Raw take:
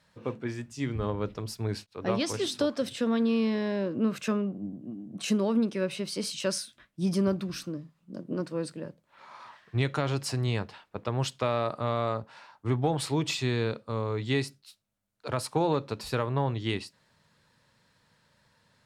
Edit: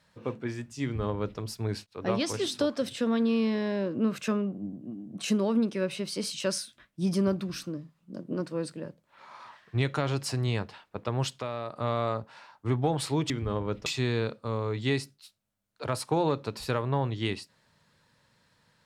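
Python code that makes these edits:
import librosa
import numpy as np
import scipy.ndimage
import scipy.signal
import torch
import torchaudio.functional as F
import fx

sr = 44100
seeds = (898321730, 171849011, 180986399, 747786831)

y = fx.edit(x, sr, fx.duplicate(start_s=0.83, length_s=0.56, to_s=13.3),
    fx.clip_gain(start_s=11.42, length_s=0.34, db=-7.0), tone=tone)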